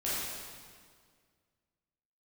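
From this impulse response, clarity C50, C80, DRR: -3.5 dB, -1.0 dB, -10.0 dB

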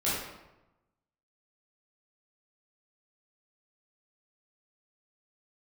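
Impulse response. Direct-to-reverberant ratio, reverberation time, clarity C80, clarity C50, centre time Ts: -10.0 dB, 1.0 s, 3.0 dB, -1.0 dB, 73 ms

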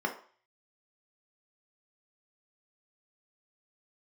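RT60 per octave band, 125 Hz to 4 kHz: 0.35, 0.35, 0.40, 0.45, 0.45, 0.45 s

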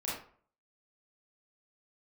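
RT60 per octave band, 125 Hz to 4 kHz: 0.50, 0.50, 0.50, 0.50, 0.40, 0.30 s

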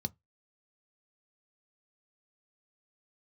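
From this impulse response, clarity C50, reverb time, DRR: 32.5 dB, 0.15 s, 11.5 dB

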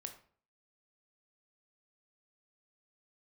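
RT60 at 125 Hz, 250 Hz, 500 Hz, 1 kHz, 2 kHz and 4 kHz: 0.55, 0.55, 0.50, 0.45, 0.40, 0.35 s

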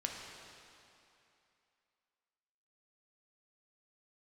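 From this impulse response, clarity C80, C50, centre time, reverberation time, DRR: 2.5 dB, 1.5 dB, 0.104 s, 2.8 s, 0.0 dB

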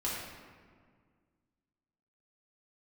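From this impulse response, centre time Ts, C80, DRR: 89 ms, 1.5 dB, -7.0 dB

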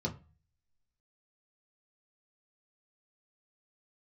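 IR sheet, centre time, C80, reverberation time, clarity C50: 11 ms, 21.0 dB, 0.35 s, 15.5 dB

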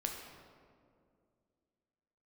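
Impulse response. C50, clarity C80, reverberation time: 3.5 dB, 5.0 dB, 2.3 s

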